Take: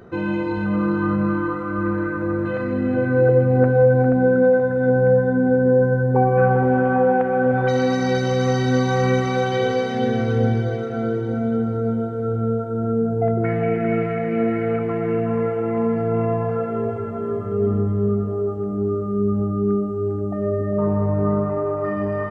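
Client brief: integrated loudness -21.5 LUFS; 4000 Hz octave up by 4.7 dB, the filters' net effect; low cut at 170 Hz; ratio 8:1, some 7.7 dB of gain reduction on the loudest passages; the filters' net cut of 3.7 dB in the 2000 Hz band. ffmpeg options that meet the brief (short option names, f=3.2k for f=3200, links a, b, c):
-af "highpass=170,equalizer=f=2k:t=o:g=-7,equalizer=f=4k:t=o:g=7.5,acompressor=threshold=-20dB:ratio=8,volume=3.5dB"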